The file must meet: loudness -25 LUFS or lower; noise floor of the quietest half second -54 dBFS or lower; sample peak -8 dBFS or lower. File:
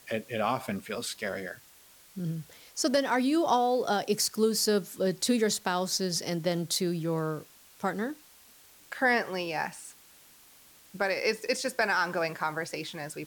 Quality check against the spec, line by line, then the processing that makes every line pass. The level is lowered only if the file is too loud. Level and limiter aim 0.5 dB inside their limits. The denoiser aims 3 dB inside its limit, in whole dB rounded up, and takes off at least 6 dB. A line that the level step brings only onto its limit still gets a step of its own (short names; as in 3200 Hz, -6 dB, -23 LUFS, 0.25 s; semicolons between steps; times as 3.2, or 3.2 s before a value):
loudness -29.5 LUFS: OK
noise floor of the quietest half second -56 dBFS: OK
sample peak -15.0 dBFS: OK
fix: none